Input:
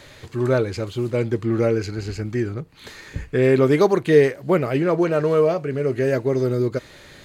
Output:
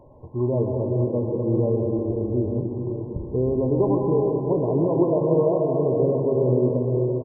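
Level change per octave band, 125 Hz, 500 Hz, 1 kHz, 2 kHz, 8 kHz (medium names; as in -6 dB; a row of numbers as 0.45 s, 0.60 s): +0.5 dB, -2.0 dB, -3.5 dB, under -40 dB, no reading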